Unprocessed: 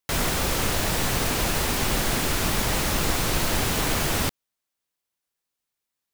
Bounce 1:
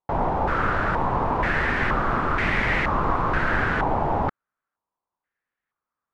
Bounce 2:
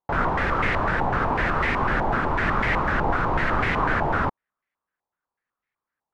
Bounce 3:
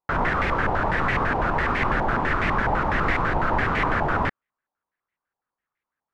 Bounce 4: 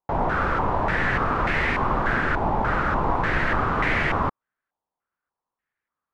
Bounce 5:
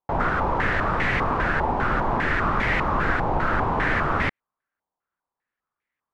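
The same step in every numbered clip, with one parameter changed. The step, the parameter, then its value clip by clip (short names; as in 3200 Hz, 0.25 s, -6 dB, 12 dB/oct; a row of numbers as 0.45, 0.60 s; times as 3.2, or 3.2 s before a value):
stepped low-pass, rate: 2.1, 8, 12, 3.4, 5 Hz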